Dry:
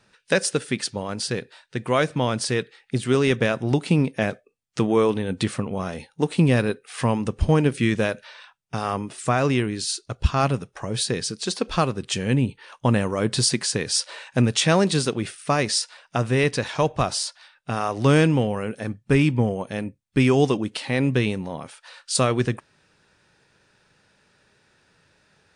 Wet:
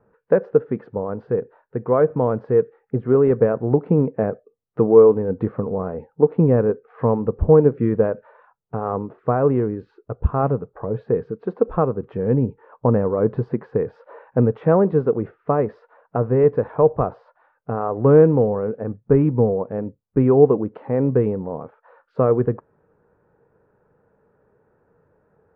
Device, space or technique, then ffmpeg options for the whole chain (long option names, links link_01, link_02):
under water: -af "lowpass=frequency=1200:width=0.5412,lowpass=frequency=1200:width=1.3066,equalizer=frequency=460:width_type=o:width=0.31:gain=10.5,volume=1dB"